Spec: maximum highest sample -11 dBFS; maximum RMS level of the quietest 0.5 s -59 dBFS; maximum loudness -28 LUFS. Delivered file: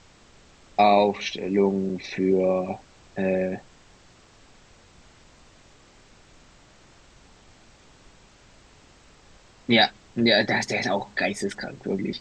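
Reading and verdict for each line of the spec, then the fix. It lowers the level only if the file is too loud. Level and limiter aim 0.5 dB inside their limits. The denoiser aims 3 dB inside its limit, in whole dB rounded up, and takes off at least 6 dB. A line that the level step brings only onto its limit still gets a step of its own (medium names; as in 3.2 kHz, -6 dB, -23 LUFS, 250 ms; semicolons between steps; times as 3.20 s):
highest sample -5.5 dBFS: fail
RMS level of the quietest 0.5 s -54 dBFS: fail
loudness -23.5 LUFS: fail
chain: noise reduction 6 dB, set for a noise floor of -54 dBFS; trim -5 dB; peak limiter -11.5 dBFS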